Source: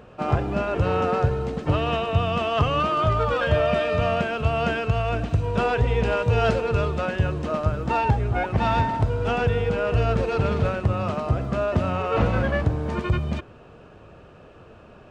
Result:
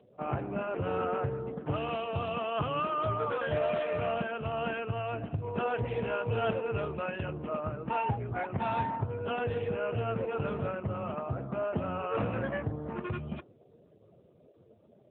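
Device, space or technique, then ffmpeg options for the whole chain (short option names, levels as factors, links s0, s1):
mobile call with aggressive noise cancelling: -filter_complex "[0:a]asplit=3[s0][s1][s2];[s0]afade=t=out:st=6.69:d=0.02[s3];[s1]equalizer=f=2500:t=o:w=0.43:g=3,afade=t=in:st=6.69:d=0.02,afade=t=out:st=8.22:d=0.02[s4];[s2]afade=t=in:st=8.22:d=0.02[s5];[s3][s4][s5]amix=inputs=3:normalize=0,highpass=f=110:p=1,afftdn=nr=35:nf=-42,volume=0.422" -ar 8000 -c:a libopencore_amrnb -b:a 7950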